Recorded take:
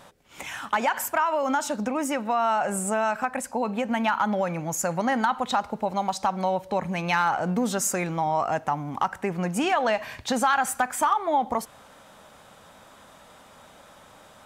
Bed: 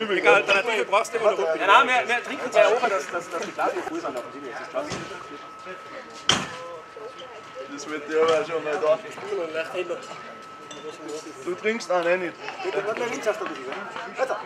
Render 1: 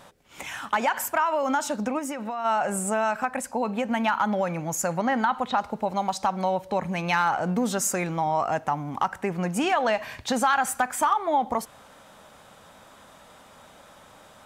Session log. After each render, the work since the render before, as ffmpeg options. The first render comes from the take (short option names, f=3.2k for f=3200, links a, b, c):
-filter_complex "[0:a]asplit=3[a][b][c];[a]afade=t=out:st=1.98:d=0.02[d];[b]acompressor=threshold=-27dB:ratio=10:attack=3.2:release=140:knee=1:detection=peak,afade=t=in:st=1.98:d=0.02,afade=t=out:st=2.44:d=0.02[e];[c]afade=t=in:st=2.44:d=0.02[f];[d][e][f]amix=inputs=3:normalize=0,asettb=1/sr,asplit=3[g][h][i];[g]atrim=end=4.974[j];[h]atrim=start=4.97:end=5.58,asetpts=PTS-STARTPTS,afade=t=in:d=0.004:c=qsin,afade=t=out:st=0.606:d=0.004:c=qsin,acrossover=split=4000[k][l];[l]acompressor=threshold=-54dB:ratio=4:attack=1:release=60[m];[k][m]amix=inputs=2:normalize=0[n];[i]atrim=start=5.576[o];[j][n]acrossfade=d=0.004:c1=hsin:c2=qsin[p];[p][o]acrossfade=d=0.004:c1=qsin:c2=hsin"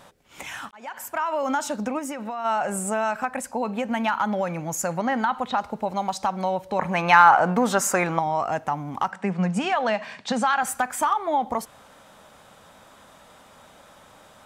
-filter_complex "[0:a]asettb=1/sr,asplit=3[a][b][c];[a]atrim=end=6.794[d];[b]atrim=start=6.79:end=8.19,asetpts=PTS-STARTPTS,afade=t=in:d=0.004:c=qsin,afade=t=out:st=1.396:d=0.004:c=qsin,equalizer=f=1.1k:w=0.56:g=11[e];[c]atrim=start=8.186[f];[d][e]acrossfade=d=0.004:c1=hsin:c2=qsin[g];[g][f]acrossfade=d=0.004:c1=qsin:c2=hsin,asettb=1/sr,asplit=3[h][i][j];[h]atrim=end=9.114[k];[i]atrim=start=9.11:end=10.63,asetpts=PTS-STARTPTS,afade=t=in:d=0.004:c=qsin,afade=t=out:st=1.516:d=0.004:c=qsin,highpass=f=170:w=0.5412,highpass=f=170:w=1.3066,equalizer=f=190:t=q:w=4:g=10,equalizer=f=320:t=q:w=4:g=-8,equalizer=f=6.5k:t=q:w=4:g=-4,lowpass=f=8.1k:w=0.5412,lowpass=f=8.1k:w=1.3066[l];[j]atrim=start=10.626[m];[k][l]acrossfade=d=0.004:c1=hsin:c2=qsin[n];[n][m]acrossfade=d=0.004:c1=qsin:c2=hsin,asplit=2[o][p];[o]atrim=end=0.71,asetpts=PTS-STARTPTS,afade=t=out:st=0.706:d=0.004:c=hsin[q];[p]atrim=start=0.71,asetpts=PTS-STARTPTS,afade=t=in:d=0.7[r];[q][r]concat=n=2:v=0:a=1"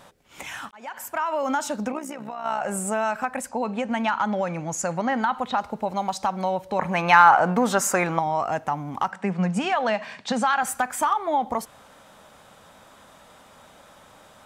-filter_complex "[0:a]asettb=1/sr,asplit=3[a][b][c];[a]atrim=end=1.924[d];[b]atrim=start=1.92:end=2.66,asetpts=PTS-STARTPTS,afade=t=in:d=0.004:c=qsin,afade=t=out:st=0.736:d=0.004:c=qsin,tremolo=f=63:d=0.71[e];[c]atrim=start=2.656[f];[d][e]acrossfade=d=0.004:c1=hsin:c2=qsin[g];[g][f]acrossfade=d=0.004:c1=qsin:c2=hsin,asettb=1/sr,asplit=3[h][i][j];[h]atrim=end=3.494[k];[i]atrim=start=3.49:end=5.23,asetpts=PTS-STARTPTS,afade=t=in:d=0.004:c=qsin,afade=t=out:st=1.736:d=0.004:c=qsin,lowpass=f=9.3k:w=0.5412,lowpass=f=9.3k:w=1.3066[l];[j]atrim=start=5.226[m];[k][l]acrossfade=d=0.004:c1=hsin:c2=qsin[n];[n][m]acrossfade=d=0.004:c1=qsin:c2=hsin"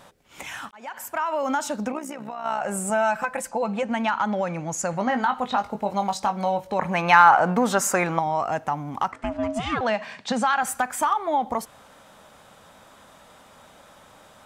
-filter_complex "[0:a]asettb=1/sr,asplit=3[a][b][c];[a]atrim=end=2.894[d];[b]atrim=start=2.89:end=3.83,asetpts=PTS-STARTPTS,afade=t=in:d=0.004:c=qsin,afade=t=out:st=0.936:d=0.004:c=qsin,aecho=1:1:5.9:0.65,atrim=end_sample=41454[e];[c]atrim=start=3.826[f];[d][e]acrossfade=d=0.004:c1=hsin:c2=qsin[g];[g][f]acrossfade=d=0.004:c1=qsin:c2=hsin,asettb=1/sr,asplit=3[h][i][j];[h]atrim=end=4.914[k];[i]atrim=start=4.91:end=6.74,asetpts=PTS-STARTPTS,afade=t=in:d=0.004:c=qsin,afade=t=out:st=1.826:d=0.004:c=qsin,asplit=2[l][m];[m]adelay=20,volume=-7dB[n];[l][n]amix=inputs=2:normalize=0,atrim=end_sample=80703[o];[j]atrim=start=6.736[p];[k][o]acrossfade=d=0.004:c1=hsin:c2=qsin[q];[q][p]acrossfade=d=0.004:c1=qsin:c2=hsin,asettb=1/sr,asplit=3[r][s][t];[r]atrim=end=9.124[u];[s]atrim=start=9.12:end=9.81,asetpts=PTS-STARTPTS,afade=t=in:d=0.004:c=qsin,afade=t=out:st=0.686:d=0.004:c=qsin,aeval=exprs='val(0)*sin(2*PI*450*n/s)':c=same[v];[t]atrim=start=9.806[w];[u][v]acrossfade=d=0.004:c1=hsin:c2=qsin[x];[x][w]acrossfade=d=0.004:c1=qsin:c2=hsin"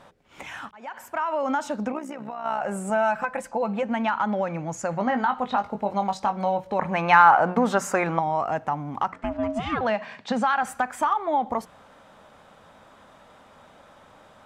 -af "lowpass=f=2.5k:p=1,bandreject=f=60:t=h:w=6,bandreject=f=120:t=h:w=6,bandreject=f=180:t=h:w=6"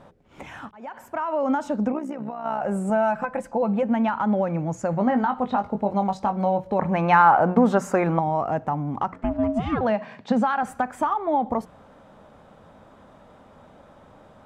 -af "tiltshelf=f=860:g=6.5"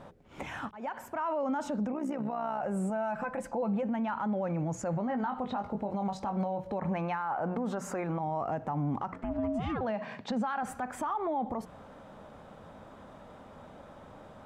-af "acompressor=threshold=-24dB:ratio=6,alimiter=level_in=1dB:limit=-24dB:level=0:latency=1:release=35,volume=-1dB"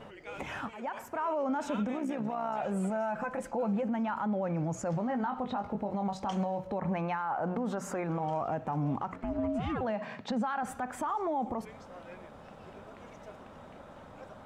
-filter_complex "[1:a]volume=-28dB[a];[0:a][a]amix=inputs=2:normalize=0"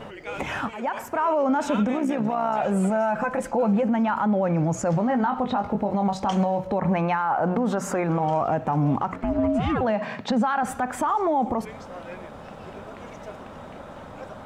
-af "volume=9.5dB"